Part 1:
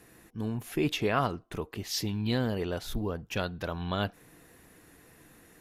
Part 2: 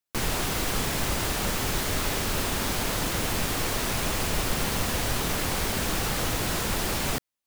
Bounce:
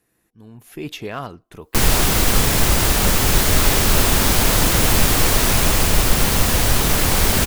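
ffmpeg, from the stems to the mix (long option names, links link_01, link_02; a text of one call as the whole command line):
ffmpeg -i stem1.wav -i stem2.wav -filter_complex "[0:a]volume=17.5dB,asoftclip=hard,volume=-17.5dB,volume=-13dB[link_01];[1:a]lowshelf=frequency=86:gain=7,adelay=1600,volume=-1.5dB[link_02];[link_01][link_02]amix=inputs=2:normalize=0,highshelf=frequency=6800:gain=5,dynaudnorm=framelen=460:gausssize=3:maxgain=13dB" out.wav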